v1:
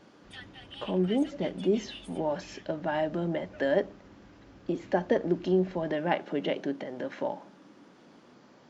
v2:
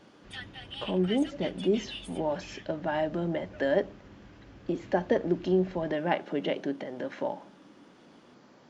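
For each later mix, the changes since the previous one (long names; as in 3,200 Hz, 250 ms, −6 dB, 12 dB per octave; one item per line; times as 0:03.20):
background +4.5 dB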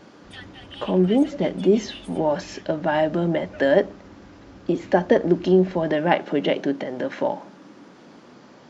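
speech +8.5 dB
background: add parametric band 75 Hz +7 dB 0.72 octaves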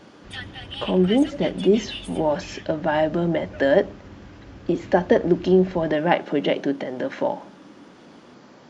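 background +5.5 dB
reverb: on, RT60 0.85 s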